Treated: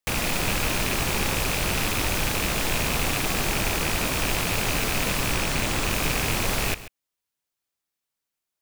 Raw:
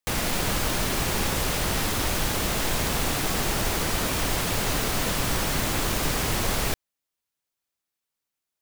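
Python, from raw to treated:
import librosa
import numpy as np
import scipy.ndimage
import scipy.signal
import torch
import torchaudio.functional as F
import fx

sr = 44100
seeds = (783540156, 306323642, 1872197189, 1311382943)

p1 = fx.rattle_buzz(x, sr, strikes_db=-30.0, level_db=-16.0)
p2 = fx.peak_eq(p1, sr, hz=13000.0, db=-6.0, octaves=0.37, at=(5.32, 5.91))
y = p2 + fx.echo_single(p2, sr, ms=136, db=-15.5, dry=0)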